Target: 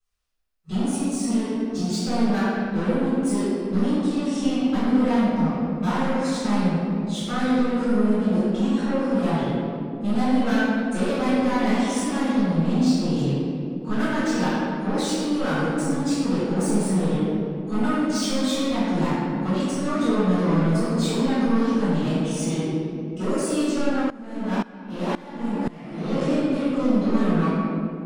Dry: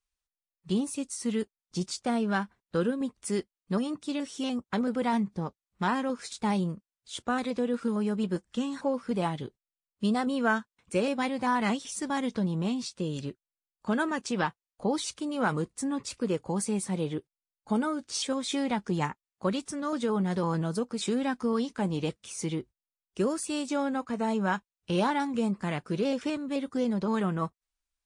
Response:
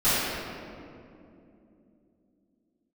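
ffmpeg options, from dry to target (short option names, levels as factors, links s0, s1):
-filter_complex "[0:a]asoftclip=type=tanh:threshold=0.0282[s0];[1:a]atrim=start_sample=2205[s1];[s0][s1]afir=irnorm=-1:irlink=0,asettb=1/sr,asplit=3[s2][s3][s4];[s2]atrim=end=24.104[s5];[s3]atrim=start=24.1:end=26.21,asetpts=PTS-STARTPTS,afade=t=in:d=0.004:c=qsin,afade=t=out:st=2.106:d=0.004:c=qsin,aeval=exprs='val(0)*pow(10,-20*if(lt(mod(-1.9*n/s,1),2*abs(-1.9)/1000),1-mod(-1.9*n/s,1)/(2*abs(-1.9)/1000),(mod(-1.9*n/s,1)-2*abs(-1.9)/1000)/(1-2*abs(-1.9)/1000))/20)':c=same[s6];[s4]atrim=start=26.206[s7];[s5][s6]acrossfade=d=0.004:c1=hsin:c2=qsin[s8];[s8][s7]acrossfade=d=0.004:c1=qsin:c2=hsin,volume=0.473"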